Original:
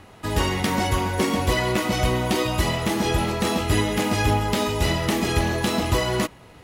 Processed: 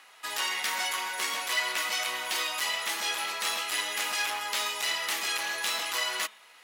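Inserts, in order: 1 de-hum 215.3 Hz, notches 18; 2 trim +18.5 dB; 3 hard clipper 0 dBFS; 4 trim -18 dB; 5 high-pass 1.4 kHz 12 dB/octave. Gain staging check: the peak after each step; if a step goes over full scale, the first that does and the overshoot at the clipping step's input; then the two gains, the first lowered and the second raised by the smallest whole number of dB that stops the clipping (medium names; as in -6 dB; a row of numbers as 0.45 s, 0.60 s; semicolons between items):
-9.0 dBFS, +9.5 dBFS, 0.0 dBFS, -18.0 dBFS, -13.5 dBFS; step 2, 9.5 dB; step 2 +8.5 dB, step 4 -8 dB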